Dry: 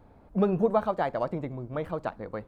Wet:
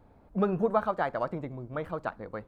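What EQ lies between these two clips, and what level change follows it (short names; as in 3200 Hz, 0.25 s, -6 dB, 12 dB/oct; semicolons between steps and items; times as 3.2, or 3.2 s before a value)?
dynamic EQ 1400 Hz, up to +7 dB, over -44 dBFS, Q 1.7; -3.0 dB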